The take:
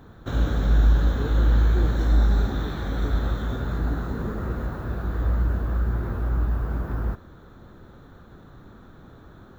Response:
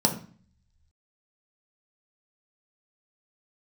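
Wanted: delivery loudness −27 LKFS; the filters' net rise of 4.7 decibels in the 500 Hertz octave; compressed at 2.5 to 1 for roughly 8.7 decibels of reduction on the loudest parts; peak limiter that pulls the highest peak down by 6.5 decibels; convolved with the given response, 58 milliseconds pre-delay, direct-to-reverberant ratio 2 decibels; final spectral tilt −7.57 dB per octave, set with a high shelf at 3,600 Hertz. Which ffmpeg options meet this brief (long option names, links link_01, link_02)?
-filter_complex "[0:a]equalizer=frequency=500:width_type=o:gain=6,highshelf=frequency=3600:gain=-5,acompressor=threshold=-27dB:ratio=2.5,alimiter=limit=-24dB:level=0:latency=1,asplit=2[link_01][link_02];[1:a]atrim=start_sample=2205,adelay=58[link_03];[link_02][link_03]afir=irnorm=-1:irlink=0,volume=-14dB[link_04];[link_01][link_04]amix=inputs=2:normalize=0,volume=3.5dB"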